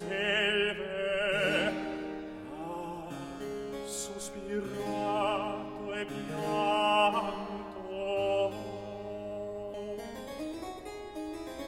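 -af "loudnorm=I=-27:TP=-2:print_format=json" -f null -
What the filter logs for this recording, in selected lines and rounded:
"input_i" : "-34.0",
"input_tp" : "-14.6",
"input_lra" : "9.1",
"input_thresh" : "-44.0",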